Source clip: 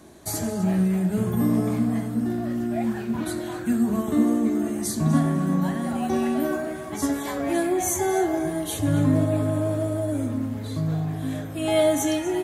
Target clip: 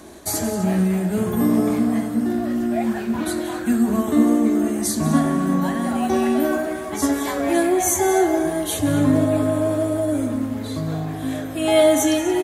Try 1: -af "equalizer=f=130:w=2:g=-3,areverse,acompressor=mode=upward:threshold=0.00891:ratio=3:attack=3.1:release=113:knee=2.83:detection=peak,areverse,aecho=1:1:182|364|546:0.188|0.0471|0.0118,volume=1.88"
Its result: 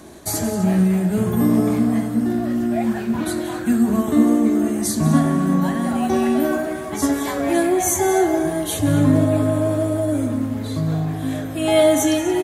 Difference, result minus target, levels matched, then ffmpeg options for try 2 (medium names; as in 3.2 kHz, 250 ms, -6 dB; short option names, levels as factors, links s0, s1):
125 Hz band +3.5 dB
-af "equalizer=f=130:w=2:g=-11.5,areverse,acompressor=mode=upward:threshold=0.00891:ratio=3:attack=3.1:release=113:knee=2.83:detection=peak,areverse,aecho=1:1:182|364|546:0.188|0.0471|0.0118,volume=1.88"